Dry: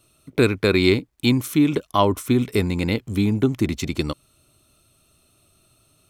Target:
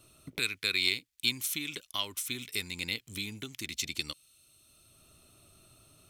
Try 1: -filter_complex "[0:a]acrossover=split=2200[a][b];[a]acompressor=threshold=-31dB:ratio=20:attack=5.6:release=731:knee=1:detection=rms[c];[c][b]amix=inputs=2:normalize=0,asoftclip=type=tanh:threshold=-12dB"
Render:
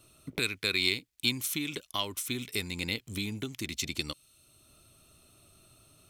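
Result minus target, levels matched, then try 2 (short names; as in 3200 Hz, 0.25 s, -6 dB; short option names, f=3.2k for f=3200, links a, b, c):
compressor: peak gain reduction -6.5 dB
-filter_complex "[0:a]acrossover=split=2200[a][b];[a]acompressor=threshold=-38dB:ratio=20:attack=5.6:release=731:knee=1:detection=rms[c];[c][b]amix=inputs=2:normalize=0,asoftclip=type=tanh:threshold=-12dB"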